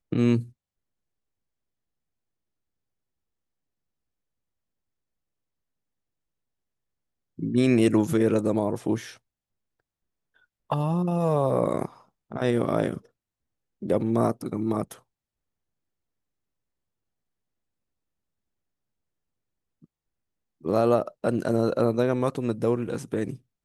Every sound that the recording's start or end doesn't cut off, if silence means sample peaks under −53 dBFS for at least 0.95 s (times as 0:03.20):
0:07.38–0:09.18
0:10.36–0:15.00